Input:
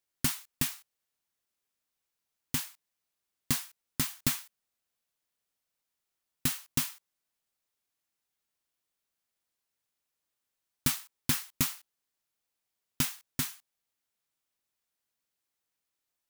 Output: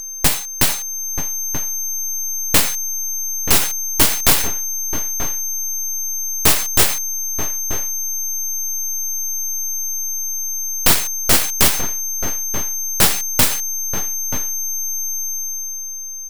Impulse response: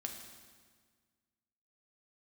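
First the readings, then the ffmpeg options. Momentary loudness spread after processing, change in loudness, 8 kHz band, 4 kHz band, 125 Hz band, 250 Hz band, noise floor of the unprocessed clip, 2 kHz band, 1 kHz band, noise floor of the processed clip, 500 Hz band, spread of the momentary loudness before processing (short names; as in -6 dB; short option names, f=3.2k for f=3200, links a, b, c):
7 LU, +14.5 dB, +23.0 dB, +17.0 dB, +11.0 dB, +11.0 dB, under -85 dBFS, +17.5 dB, +21.0 dB, -28 dBFS, +25.0 dB, 7 LU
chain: -filter_complex "[0:a]aeval=exprs='val(0)+0.00631*sin(2*PI*6300*n/s)':c=same,equalizer=f=800:t=o:w=0.33:g=10,equalizer=f=4k:t=o:w=0.33:g=7,equalizer=f=8k:t=o:w=0.33:g=5,dynaudnorm=f=160:g=11:m=6.5dB,aeval=exprs='(mod(9.44*val(0)+1,2)-1)/9.44':c=same,lowshelf=f=460:g=11,aeval=exprs='0.178*(cos(1*acos(clip(val(0)/0.178,-1,1)))-cos(1*PI/2))+0.0224*(cos(3*acos(clip(val(0)/0.178,-1,1)))-cos(3*PI/2))+0.0316*(cos(7*acos(clip(val(0)/0.178,-1,1)))-cos(7*PI/2))+0.0316*(cos(8*acos(clip(val(0)/0.178,-1,1)))-cos(8*PI/2))':c=same,asplit=2[a][b];[b]adelay=932.9,volume=-14dB,highshelf=f=4k:g=-21[c];[a][c]amix=inputs=2:normalize=0,alimiter=level_in=21.5dB:limit=-1dB:release=50:level=0:latency=1,volume=-2dB"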